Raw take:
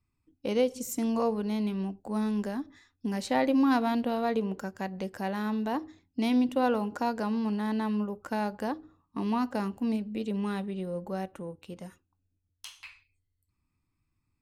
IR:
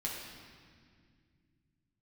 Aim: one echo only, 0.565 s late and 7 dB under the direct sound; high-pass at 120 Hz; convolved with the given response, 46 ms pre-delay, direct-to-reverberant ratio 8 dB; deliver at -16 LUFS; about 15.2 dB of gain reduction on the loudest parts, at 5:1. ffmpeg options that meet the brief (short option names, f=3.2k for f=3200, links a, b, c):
-filter_complex "[0:a]highpass=120,acompressor=threshold=-39dB:ratio=5,aecho=1:1:565:0.447,asplit=2[a][b];[1:a]atrim=start_sample=2205,adelay=46[c];[b][c]afir=irnorm=-1:irlink=0,volume=-10.5dB[d];[a][d]amix=inputs=2:normalize=0,volume=25dB"